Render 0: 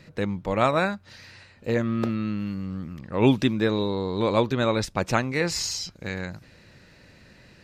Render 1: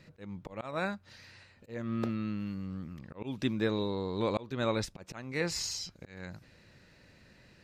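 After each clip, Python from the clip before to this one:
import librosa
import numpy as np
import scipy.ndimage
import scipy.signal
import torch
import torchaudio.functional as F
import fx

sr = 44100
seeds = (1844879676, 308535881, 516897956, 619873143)

y = fx.auto_swell(x, sr, attack_ms=284.0)
y = y * librosa.db_to_amplitude(-7.0)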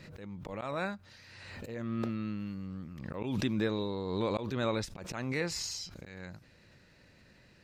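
y = fx.pre_swell(x, sr, db_per_s=33.0)
y = y * librosa.db_to_amplitude(-2.0)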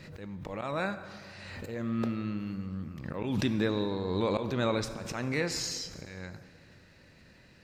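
y = fx.rev_plate(x, sr, seeds[0], rt60_s=2.3, hf_ratio=0.6, predelay_ms=0, drr_db=10.0)
y = y * librosa.db_to_amplitude(2.5)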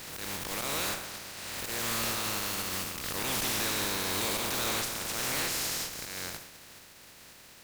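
y = fx.spec_flatten(x, sr, power=0.23)
y = fx.tube_stage(y, sr, drive_db=37.0, bias=0.65)
y = y * librosa.db_to_amplitude(8.5)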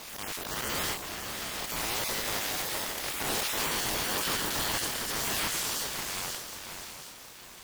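y = fx.spec_dropout(x, sr, seeds[1], share_pct=25)
y = fx.echo_swing(y, sr, ms=719, ratio=3, feedback_pct=37, wet_db=-7.5)
y = fx.ring_lfo(y, sr, carrier_hz=640.0, swing_pct=20, hz=1.4)
y = y * librosa.db_to_amplitude(4.0)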